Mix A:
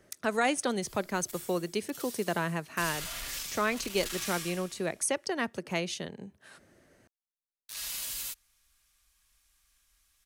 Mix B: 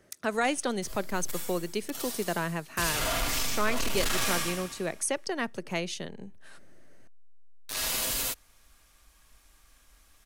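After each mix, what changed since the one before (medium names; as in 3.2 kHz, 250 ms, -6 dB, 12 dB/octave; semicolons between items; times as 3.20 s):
background: remove amplifier tone stack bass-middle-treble 5-5-5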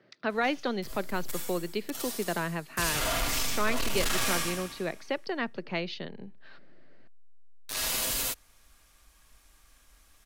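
speech: add Chebyshev band-pass 120–4600 Hz, order 4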